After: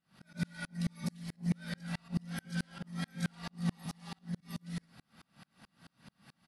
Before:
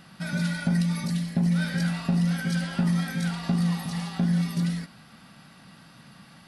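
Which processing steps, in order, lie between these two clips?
3.87–4.41 s: compression 6:1, threshold -28 dBFS, peak gain reduction 7.5 dB; slow attack 107 ms; delay 107 ms -13.5 dB; sawtooth tremolo in dB swelling 4.6 Hz, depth 37 dB; trim -1.5 dB

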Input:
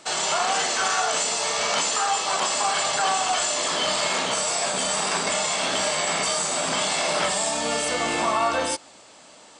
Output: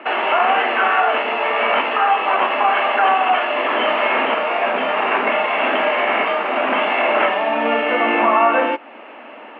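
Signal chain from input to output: Chebyshev band-pass 220–2800 Hz, order 5; in parallel at +1 dB: compression, threshold -39 dBFS, peak gain reduction 18.5 dB; on the sum: trim +7.5 dB

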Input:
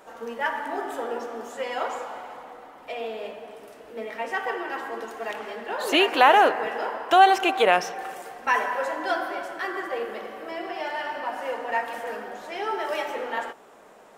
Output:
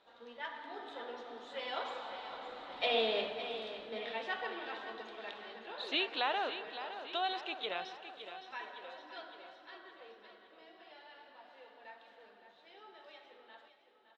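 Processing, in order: Doppler pass-by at 3.03 s, 8 m/s, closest 2.8 m; resonant low-pass 3.8 kHz, resonance Q 7.6; feedback delay 563 ms, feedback 55%, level -11 dB

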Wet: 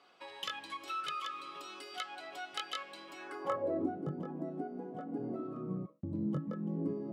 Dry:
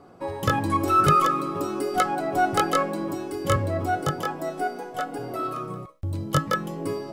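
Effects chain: high-pass 140 Hz 12 dB/octave; compression 3:1, threshold -32 dBFS, peak gain reduction 13 dB; band-pass sweep 3.2 kHz -> 210 Hz, 3.08–3.95 s; trim +6 dB

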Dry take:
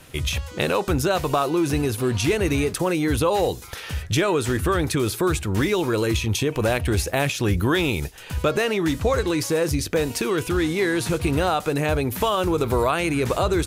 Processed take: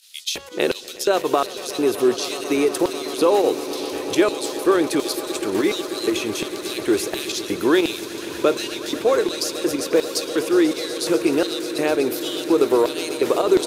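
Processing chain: volume shaper 123 bpm, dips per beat 2, -11 dB, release 61 ms; LFO high-pass square 1.4 Hz 350–4200 Hz; echo with a slow build-up 123 ms, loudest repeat 8, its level -18 dB

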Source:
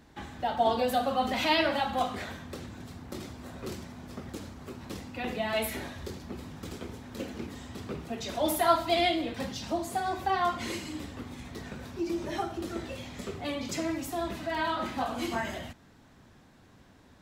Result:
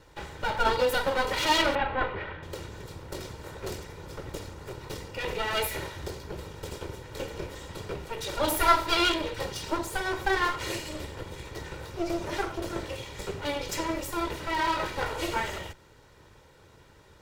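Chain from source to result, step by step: comb filter that takes the minimum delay 2.1 ms; 1.75–2.43 s: low-pass 2.8 kHz 24 dB/octave; trim +4 dB

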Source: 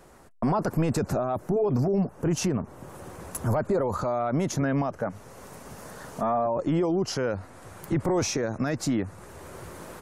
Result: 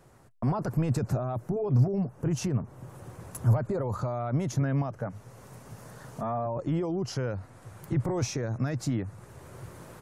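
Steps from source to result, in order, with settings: peaking EQ 120 Hz +13 dB 0.65 oct; trim -6.5 dB

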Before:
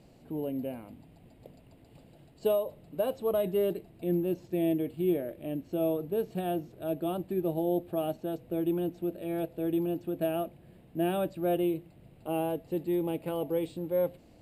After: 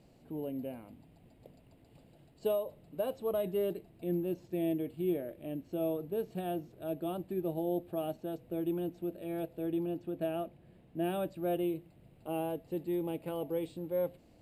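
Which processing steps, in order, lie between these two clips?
9.66–11.04 s: treble shelf 8.7 kHz -8.5 dB; trim -4.5 dB

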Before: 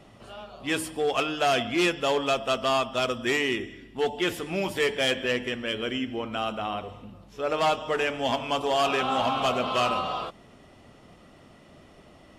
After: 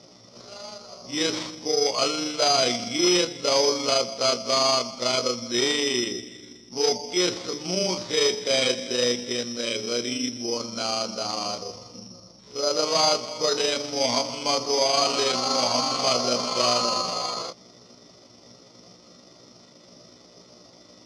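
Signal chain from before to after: granular stretch 1.7×, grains 81 ms; careless resampling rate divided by 8×, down none, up zero stuff; cabinet simulation 130–4800 Hz, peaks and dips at 520 Hz +4 dB, 780 Hz -4 dB, 1.7 kHz -9 dB, 2.7 kHz -9 dB; trim +2 dB

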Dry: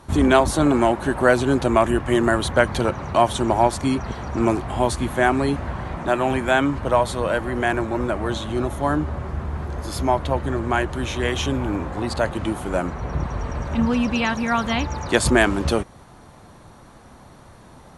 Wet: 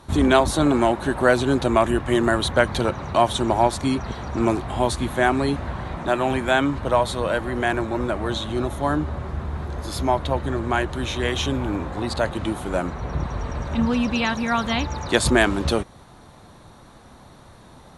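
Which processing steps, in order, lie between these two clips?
peaking EQ 3.8 kHz +6.5 dB 0.29 oct; trim -1 dB

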